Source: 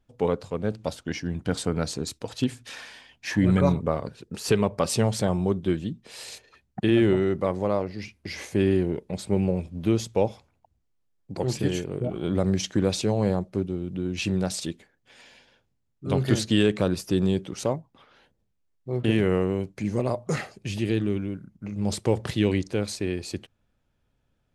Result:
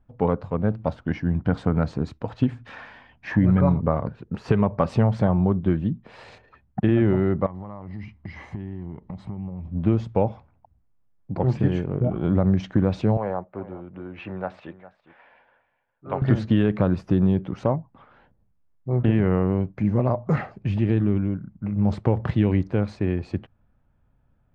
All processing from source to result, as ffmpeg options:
ffmpeg -i in.wav -filter_complex "[0:a]asettb=1/sr,asplit=3[link_01][link_02][link_03];[link_01]atrim=end=7.464[link_04];[link_02]atrim=start=7.46:end=9.69,asetpts=PTS-STARTPTS,afade=type=in:duration=0.004:curve=qsin,afade=type=out:start_time=2.226:duration=0.004:curve=qsin,acompressor=threshold=-38dB:ratio=6:attack=3.2:release=140:knee=1:detection=peak,aecho=1:1:1:0.46,atrim=end_sample=98343[link_05];[link_03]atrim=start=9.686[link_06];[link_04][link_05]acrossfade=duration=0.004:curve1=hsin:curve2=qsin[link_07];[link_07][link_06]acrossfade=duration=0.004:curve1=qsin:curve2=hsin,asettb=1/sr,asplit=3[link_08][link_09][link_10];[link_08]atrim=end=13.174[link_11];[link_09]atrim=start=13.17:end=16.22,asetpts=PTS-STARTPTS,afade=type=in:duration=0.004:curve=qsin,afade=type=out:start_time=3.046:duration=0.004:curve=qsin,acrossover=split=450 2900:gain=0.126 1 0.0891[link_12][link_13][link_14];[link_12][link_13][link_14]amix=inputs=3:normalize=0,aecho=1:1:408:0.141,atrim=end_sample=134505[link_15];[link_10]atrim=start=16.216[link_16];[link_11][link_15]acrossfade=duration=0.004:curve1=hsin:curve2=qsin[link_17];[link_17][link_16]acrossfade=duration=0.004:curve1=qsin:curve2=hsin,lowpass=1200,equalizer=frequency=410:width=1.1:gain=-8,acompressor=threshold=-24dB:ratio=3,volume=9dB" out.wav

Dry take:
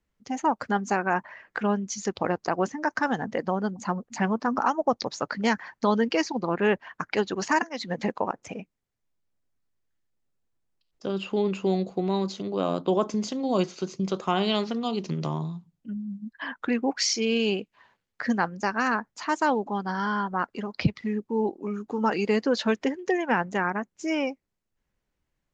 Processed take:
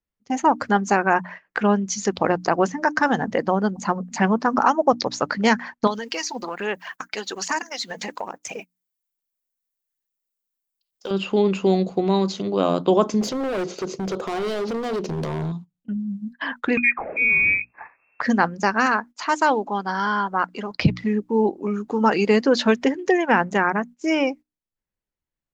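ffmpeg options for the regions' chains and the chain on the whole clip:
ffmpeg -i in.wav -filter_complex "[0:a]asettb=1/sr,asplit=3[link_01][link_02][link_03];[link_01]atrim=end=5.874[link_04];[link_02]atrim=start=5.87:end=11.11,asetpts=PTS-STARTPTS,afade=type=in:duration=0.004:curve=qsin,afade=type=out:start_time=5.236:duration=0.004:curve=qsin,aemphasis=mode=production:type=riaa,acompressor=threshold=-36dB:ratio=2.5:attack=3.2:release=140:knee=1:detection=peak,aphaser=in_gain=1:out_gain=1:delay=4.6:decay=0.43:speed=1.2:type=sinusoidal[link_05];[link_03]atrim=start=11.106[link_06];[link_04][link_05]acrossfade=duration=0.004:curve1=hsin:curve2=qsin[link_07];[link_07][link_06]acrossfade=duration=0.004:curve1=qsin:curve2=hsin,asettb=1/sr,asplit=3[link_08][link_09][link_10];[link_08]atrim=end=13.214[link_11];[link_09]atrim=start=13.21:end=15.52,asetpts=PTS-STARTPTS,afade=type=in:duration=0.004:curve=qsin,afade=type=out:start_time=2.306:duration=0.004:curve=qsin,equalizer=frequency=470:width_type=o:width=1.3:gain=11.5,acompressor=threshold=-27dB:ratio=2:attack=3.2:release=140:knee=1:detection=peak,asoftclip=type=hard:threshold=-29dB[link_12];[link_10]atrim=start=15.516[link_13];[link_11][link_12]acrossfade=duration=0.004:curve1=hsin:curve2=qsin[link_14];[link_14][link_13]acrossfade=duration=0.004:curve1=qsin:curve2=hsin,asettb=1/sr,asplit=3[link_15][link_16][link_17];[link_15]atrim=end=16.774[link_18];[link_16]atrim=start=16.77:end=18.21,asetpts=PTS-STARTPTS,afade=type=in:duration=0.004:curve=qsin,afade=type=out:start_time=1.436:duration=0.004:curve=qsin,lowpass=frequency=2300:width_type=q:width=0.5098,lowpass=frequency=2300:width_type=q:width=0.6013,lowpass=frequency=2300:width_type=q:width=0.9,lowpass=frequency=2300:width_type=q:width=2.563,afreqshift=-2700,acompressor=mode=upward:threshold=-28dB:ratio=2.5:attack=3.2:release=140:knee=2.83:detection=peak[link_19];[link_17]atrim=start=18.206[link_20];[link_18][link_19]acrossfade=duration=0.004:curve1=hsin:curve2=qsin[link_21];[link_21][link_20]acrossfade=duration=0.004:curve1=qsin:curve2=hsin,asettb=1/sr,asplit=3[link_22][link_23][link_24];[link_22]atrim=end=18.864[link_25];[link_23]atrim=start=18.86:end=20.71,asetpts=PTS-STARTPTS,afade=type=in:duration=0.004:curve=qsin,afade=type=out:start_time=1.846:duration=0.004:curve=qsin,lowshelf=frequency=300:gain=-8.5,bandreject=frequency=1800:width=23[link_26];[link_24]atrim=start=20.706[link_27];[link_25][link_26]acrossfade=duration=0.004:curve1=hsin:curve2=qsin[link_28];[link_28][link_27]acrossfade=duration=0.004:curve1=qsin:curve2=hsin,bandreject=frequency=60:width_type=h:width=6,bandreject=frequency=120:width_type=h:width=6,bandreject=frequency=180:width_type=h:width=6,bandreject=frequency=240:width_type=h:width=6,bandreject=frequency=300:width_type=h:width=6,agate=range=-17dB:threshold=-42dB:ratio=16:detection=peak,volume=6.5dB" out.wav

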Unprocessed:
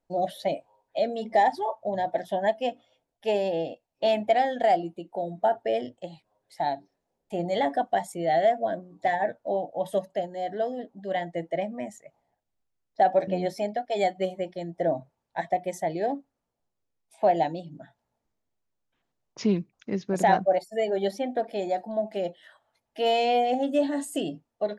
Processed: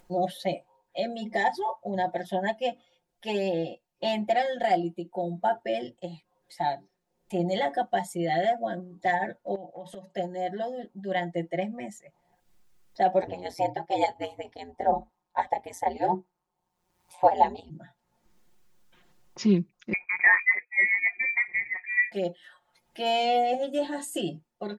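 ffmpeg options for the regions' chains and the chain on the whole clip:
ffmpeg -i in.wav -filter_complex "[0:a]asettb=1/sr,asplit=3[link_01][link_02][link_03];[link_01]atrim=end=9.554[link_04];[link_02]atrim=start=9.55:end=10.15,asetpts=PTS-STARTPTS,afade=type=in:duration=0.004:curve=qsin,afade=type=out:start_time=0.596:duration=0.004:curve=qsin,highpass=100,lowpass=8000,bandreject=frequency=1400:width=22,acompressor=threshold=-36dB:ratio=8:attack=3.2:release=140:knee=1:detection=peak[link_05];[link_03]atrim=start=10.146[link_06];[link_04][link_05]acrossfade=duration=0.004:curve1=hsin:curve2=qsin[link_07];[link_07][link_06]acrossfade=duration=0.004:curve1=qsin:curve2=hsin,asettb=1/sr,asplit=3[link_08][link_09][link_10];[link_08]atrim=end=13.224[link_11];[link_09]atrim=start=13.22:end=17.7,asetpts=PTS-STARTPTS,afade=type=in:duration=0.004:curve=qsin,afade=type=out:start_time=4.476:duration=0.004:curve=qsin,aeval=exprs='val(0)*sin(2*PI*88*n/s)':channel_layout=same,equalizer=frequency=860:width=2.1:gain=12[link_12];[link_10]atrim=start=17.696[link_13];[link_11][link_12]acrossfade=duration=0.004:curve1=hsin:curve2=qsin[link_14];[link_14][link_13]acrossfade=duration=0.004:curve1=qsin:curve2=hsin,asettb=1/sr,asplit=3[link_15][link_16][link_17];[link_15]atrim=end=19.934[link_18];[link_16]atrim=start=19.93:end=22.12,asetpts=PTS-STARTPTS,afade=type=in:duration=0.004:curve=qsin,afade=type=out:start_time=2.186:duration=0.004:curve=qsin,lowshelf=frequency=93:gain=10,lowpass=frequency=2200:width_type=q:width=0.5098,lowpass=frequency=2200:width_type=q:width=0.6013,lowpass=frequency=2200:width_type=q:width=0.9,lowpass=frequency=2200:width_type=q:width=2.563,afreqshift=-2600[link_19];[link_17]atrim=start=22.116[link_20];[link_18][link_19]acrossfade=duration=0.004:curve1=hsin:curve2=qsin[link_21];[link_21][link_20]acrossfade=duration=0.004:curve1=qsin:curve2=hsin,equalizer=frequency=630:width=2.3:gain=-5.5,aecho=1:1:5.6:0.92,acompressor=mode=upward:threshold=-44dB:ratio=2.5,volume=-1.5dB" out.wav

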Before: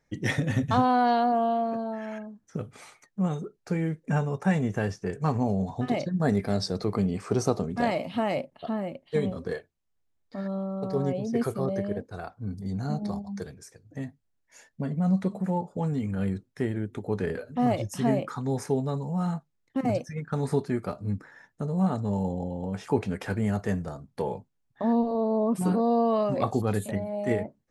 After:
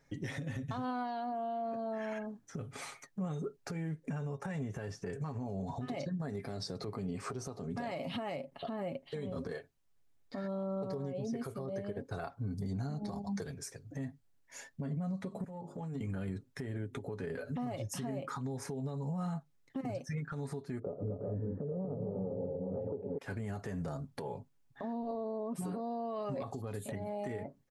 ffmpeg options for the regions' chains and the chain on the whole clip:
ffmpeg -i in.wav -filter_complex "[0:a]asettb=1/sr,asplit=3[link_01][link_02][link_03];[link_01]atrim=end=15.444[link_04];[link_02]atrim=start=15.44:end=16.01,asetpts=PTS-STARTPTS,afade=type=in:duration=0.004:curve=qsin,afade=type=out:start_time=0.566:duration=0.004:curve=qsin,highpass=frequency=97:width=0.5412,highpass=frequency=97:width=1.3066,bandreject=frequency=50:width_type=h:width=6,bandreject=frequency=100:width_type=h:width=6,bandreject=frequency=150:width_type=h:width=6,bandreject=frequency=200:width_type=h:width=6,bandreject=frequency=250:width_type=h:width=6,bandreject=frequency=300:width_type=h:width=6,bandreject=frequency=350:width_type=h:width=6,bandreject=frequency=400:width_type=h:width=6,acompressor=threshold=-42dB:ratio=10:attack=3.2:release=140:knee=1:detection=peak[link_05];[link_03]atrim=start=16.006[link_06];[link_04][link_05]acrossfade=duration=0.004:curve1=hsin:curve2=qsin[link_07];[link_07][link_06]acrossfade=duration=0.004:curve1=qsin:curve2=hsin,asettb=1/sr,asplit=3[link_08][link_09][link_10];[link_08]atrim=end=20.794[link_11];[link_09]atrim=start=20.79:end=23.18,asetpts=PTS-STARTPTS,afade=type=in:duration=0.004:curve=qsin,afade=type=out:start_time=2.386:duration=0.004:curve=qsin,lowpass=frequency=490:width_type=q:width=4.6,aecho=1:1:112|233|319|366|409|839:0.141|0.596|0.119|0.422|0.266|0.447,atrim=end_sample=105399[link_12];[link_10]atrim=start=23.176[link_13];[link_11][link_12]acrossfade=duration=0.004:curve1=hsin:curve2=qsin[link_14];[link_14][link_13]acrossfade=duration=0.004:curve1=qsin:curve2=hsin,aecho=1:1:7.3:0.4,acompressor=threshold=-31dB:ratio=10,alimiter=level_in=9dB:limit=-24dB:level=0:latency=1:release=171,volume=-9dB,volume=3dB" out.wav

